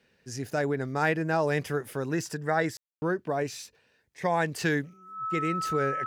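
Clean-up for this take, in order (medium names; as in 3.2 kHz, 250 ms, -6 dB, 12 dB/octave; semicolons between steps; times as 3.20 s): band-stop 1.3 kHz, Q 30; room tone fill 2.77–3.02 s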